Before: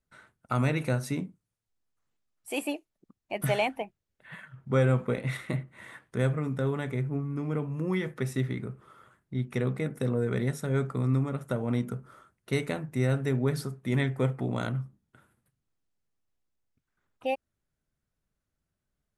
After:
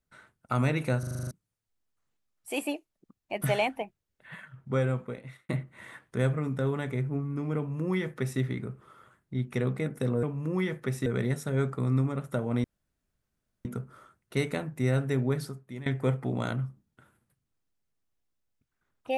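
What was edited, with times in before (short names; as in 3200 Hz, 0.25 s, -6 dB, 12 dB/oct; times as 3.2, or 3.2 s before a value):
0.99 stutter in place 0.04 s, 8 plays
4.47–5.49 fade out linear
7.57–8.4 copy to 10.23
11.81 insert room tone 1.01 s
13.39–14.02 fade out, to -18.5 dB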